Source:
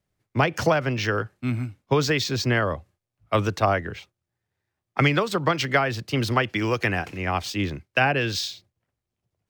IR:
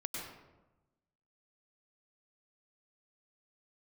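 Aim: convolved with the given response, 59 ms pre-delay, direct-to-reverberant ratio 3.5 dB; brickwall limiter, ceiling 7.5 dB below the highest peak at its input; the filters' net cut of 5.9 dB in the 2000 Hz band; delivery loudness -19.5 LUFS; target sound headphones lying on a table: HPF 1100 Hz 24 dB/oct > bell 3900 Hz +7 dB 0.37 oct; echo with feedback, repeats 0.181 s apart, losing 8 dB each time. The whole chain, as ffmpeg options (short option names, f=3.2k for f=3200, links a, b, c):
-filter_complex "[0:a]equalizer=f=2k:t=o:g=-8,alimiter=limit=-15.5dB:level=0:latency=1,aecho=1:1:181|362|543|724|905:0.398|0.159|0.0637|0.0255|0.0102,asplit=2[a][b];[1:a]atrim=start_sample=2205,adelay=59[c];[b][c]afir=irnorm=-1:irlink=0,volume=-4.5dB[d];[a][d]amix=inputs=2:normalize=0,highpass=f=1.1k:w=0.5412,highpass=f=1.1k:w=1.3066,equalizer=f=3.9k:t=o:w=0.37:g=7,volume=10dB"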